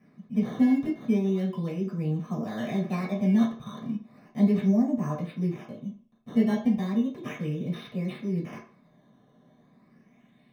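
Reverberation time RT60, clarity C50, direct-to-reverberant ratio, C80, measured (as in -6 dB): 0.45 s, 7.0 dB, -7.5 dB, 12.0 dB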